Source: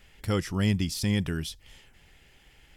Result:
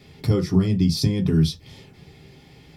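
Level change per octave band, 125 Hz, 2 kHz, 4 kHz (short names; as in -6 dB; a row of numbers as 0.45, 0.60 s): +8.5, -4.5, +4.5 dB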